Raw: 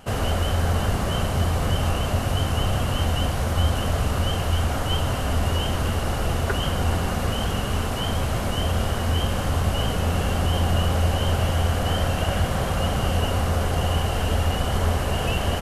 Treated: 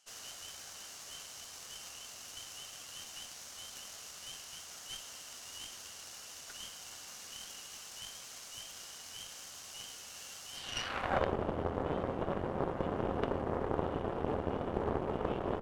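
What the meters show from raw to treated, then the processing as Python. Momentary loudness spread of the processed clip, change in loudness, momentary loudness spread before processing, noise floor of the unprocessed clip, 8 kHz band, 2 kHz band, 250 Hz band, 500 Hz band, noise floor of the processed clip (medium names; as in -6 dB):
11 LU, -16.0 dB, 3 LU, -26 dBFS, -9.5 dB, -16.0 dB, -13.5 dB, -10.5 dB, -50 dBFS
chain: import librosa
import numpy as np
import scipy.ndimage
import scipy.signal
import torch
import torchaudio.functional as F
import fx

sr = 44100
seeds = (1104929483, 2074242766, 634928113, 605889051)

y = fx.filter_sweep_bandpass(x, sr, from_hz=6100.0, to_hz=370.0, start_s=10.52, end_s=11.33, q=2.4)
y = fx.cheby_harmonics(y, sr, harmonics=(3, 4, 6, 8), levels_db=(-13, -11, -19, -29), full_scale_db=-21.5)
y = y * librosa.db_to_amplitude(4.5)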